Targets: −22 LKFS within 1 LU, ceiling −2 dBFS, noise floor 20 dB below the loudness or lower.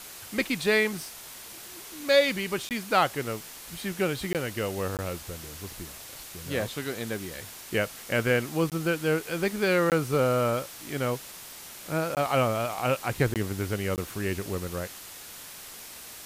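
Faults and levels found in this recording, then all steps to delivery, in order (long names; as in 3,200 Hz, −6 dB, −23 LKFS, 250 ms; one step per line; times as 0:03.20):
number of dropouts 8; longest dropout 18 ms; background noise floor −44 dBFS; target noise floor −48 dBFS; integrated loudness −28.0 LKFS; sample peak −9.0 dBFS; target loudness −22.0 LKFS
→ repair the gap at 0:02.69/0:04.33/0:04.97/0:08.70/0:09.90/0:12.15/0:13.34/0:13.96, 18 ms
noise reduction from a noise print 6 dB
level +6 dB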